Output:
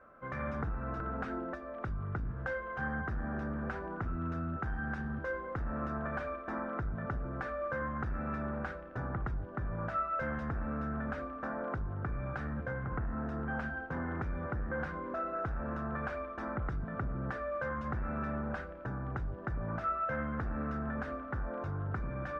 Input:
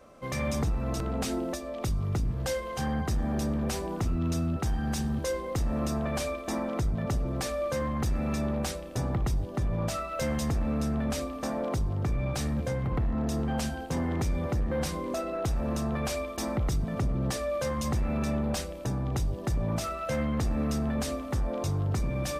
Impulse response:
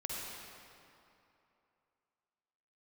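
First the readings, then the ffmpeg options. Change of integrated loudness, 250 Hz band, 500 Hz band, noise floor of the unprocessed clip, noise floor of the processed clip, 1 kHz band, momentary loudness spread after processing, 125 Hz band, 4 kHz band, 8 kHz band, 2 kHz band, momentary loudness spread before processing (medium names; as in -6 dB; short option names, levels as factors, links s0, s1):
-7.0 dB, -8.5 dB, -7.5 dB, -38 dBFS, -44 dBFS, -1.5 dB, 3 LU, -8.5 dB, under -20 dB, under -30 dB, +1.5 dB, 3 LU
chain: -af "lowpass=f=1500:t=q:w=6,volume=0.376"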